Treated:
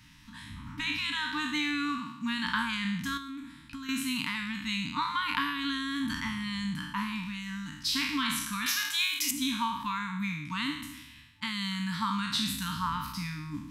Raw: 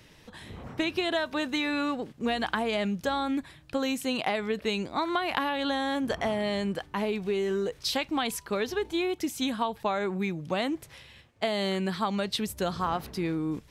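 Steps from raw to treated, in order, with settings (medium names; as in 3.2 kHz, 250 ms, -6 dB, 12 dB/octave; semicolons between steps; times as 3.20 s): spectral sustain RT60 0.88 s; 1.98–2.46 s: high-pass 140 Hz 12 dB/octave; FFT band-reject 310–880 Hz; 3.17–3.89 s: compression 3:1, threshold -39 dBFS, peak gain reduction 10 dB; 8.66–9.31 s: tilt EQ +4.5 dB/octave; trim -2.5 dB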